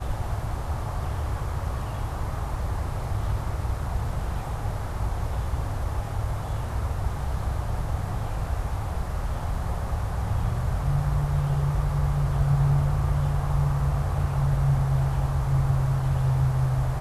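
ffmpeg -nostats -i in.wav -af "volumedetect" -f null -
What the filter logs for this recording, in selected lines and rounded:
mean_volume: -25.1 dB
max_volume: -12.0 dB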